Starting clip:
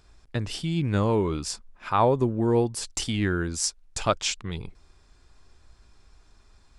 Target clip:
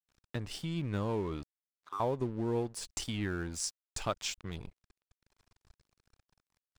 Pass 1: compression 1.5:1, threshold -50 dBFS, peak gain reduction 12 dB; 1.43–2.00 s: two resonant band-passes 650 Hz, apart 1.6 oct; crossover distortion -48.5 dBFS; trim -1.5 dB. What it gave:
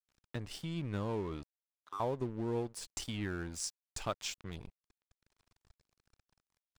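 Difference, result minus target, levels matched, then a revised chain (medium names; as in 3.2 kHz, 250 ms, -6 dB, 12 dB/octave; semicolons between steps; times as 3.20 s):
compression: peak gain reduction +2.5 dB
compression 1.5:1, threshold -42 dBFS, peak gain reduction 9.5 dB; 1.43–2.00 s: two resonant band-passes 650 Hz, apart 1.6 oct; crossover distortion -48.5 dBFS; trim -1.5 dB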